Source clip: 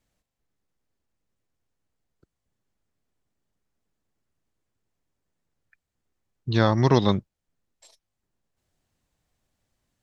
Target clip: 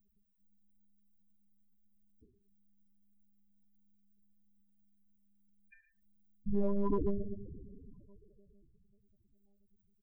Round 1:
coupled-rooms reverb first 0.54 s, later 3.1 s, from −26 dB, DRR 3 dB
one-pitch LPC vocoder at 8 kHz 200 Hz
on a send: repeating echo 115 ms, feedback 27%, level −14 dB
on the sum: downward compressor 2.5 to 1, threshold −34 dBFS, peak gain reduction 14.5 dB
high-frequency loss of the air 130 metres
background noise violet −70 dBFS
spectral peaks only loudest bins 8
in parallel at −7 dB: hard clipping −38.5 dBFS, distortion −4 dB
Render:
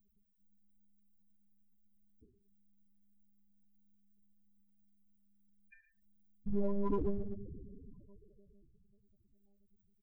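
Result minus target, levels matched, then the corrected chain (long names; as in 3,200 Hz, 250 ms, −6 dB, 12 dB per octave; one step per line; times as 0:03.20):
hard clipping: distortion +13 dB
coupled-rooms reverb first 0.54 s, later 3.1 s, from −26 dB, DRR 3 dB
one-pitch LPC vocoder at 8 kHz 200 Hz
on a send: repeating echo 115 ms, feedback 27%, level −14 dB
on the sum: downward compressor 2.5 to 1, threshold −34 dBFS, peak gain reduction 14.5 dB
high-frequency loss of the air 130 metres
background noise violet −70 dBFS
spectral peaks only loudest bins 8
in parallel at −7 dB: hard clipping −27 dBFS, distortion −17 dB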